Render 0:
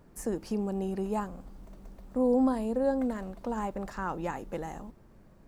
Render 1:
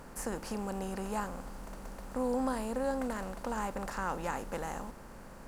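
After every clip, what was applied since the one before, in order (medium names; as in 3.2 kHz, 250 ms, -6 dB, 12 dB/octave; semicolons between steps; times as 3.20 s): spectral levelling over time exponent 0.6; peaking EQ 320 Hz -10.5 dB 2.3 oct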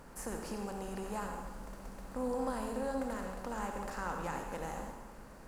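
reverberation RT60 1.1 s, pre-delay 55 ms, DRR 3 dB; trim -4.5 dB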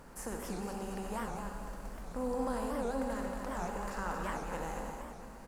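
feedback delay 231 ms, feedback 44%, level -6.5 dB; warped record 78 rpm, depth 250 cents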